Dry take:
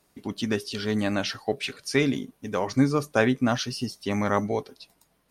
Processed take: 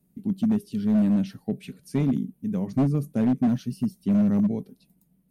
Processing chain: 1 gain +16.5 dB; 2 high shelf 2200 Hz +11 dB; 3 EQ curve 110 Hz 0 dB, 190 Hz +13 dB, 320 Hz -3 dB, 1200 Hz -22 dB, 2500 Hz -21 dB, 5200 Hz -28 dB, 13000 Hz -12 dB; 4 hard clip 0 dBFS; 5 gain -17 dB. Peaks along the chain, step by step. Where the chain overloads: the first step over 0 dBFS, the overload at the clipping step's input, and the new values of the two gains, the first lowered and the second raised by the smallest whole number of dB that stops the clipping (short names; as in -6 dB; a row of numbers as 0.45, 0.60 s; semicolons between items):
+8.0, +11.0, +9.0, 0.0, -17.0 dBFS; step 1, 9.0 dB; step 1 +7.5 dB, step 5 -8 dB